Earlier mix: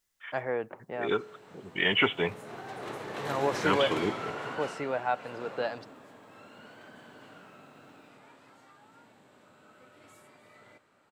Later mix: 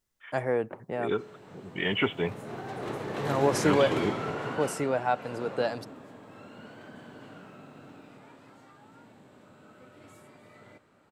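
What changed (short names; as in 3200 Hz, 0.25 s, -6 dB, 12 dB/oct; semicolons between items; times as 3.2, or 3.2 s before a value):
first voice: remove LPF 3700 Hz 12 dB/oct; second voice -5.0 dB; master: add low shelf 450 Hz +9 dB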